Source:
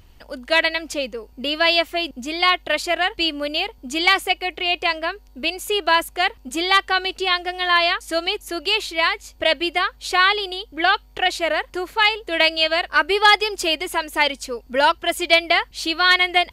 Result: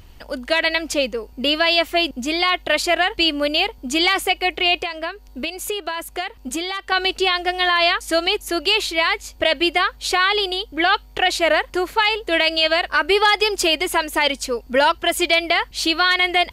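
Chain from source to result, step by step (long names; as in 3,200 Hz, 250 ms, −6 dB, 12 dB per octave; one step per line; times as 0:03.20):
brickwall limiter −12 dBFS, peak gain reduction 8.5 dB
0:04.75–0:06.92: downward compressor 6 to 1, threshold −28 dBFS, peak gain reduction 10.5 dB
level +5 dB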